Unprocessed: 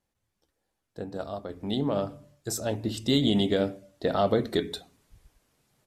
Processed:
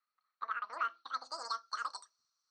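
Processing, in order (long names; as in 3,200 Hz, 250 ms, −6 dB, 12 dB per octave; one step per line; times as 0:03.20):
formant resonators in series e
dynamic equaliser 1,500 Hz, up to −6 dB, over −54 dBFS, Q 1.5
band-pass filter sweep 1,000 Hz → 3,100 Hz, 0:01.26–0:04.64
wrong playback speed 33 rpm record played at 78 rpm
level +16 dB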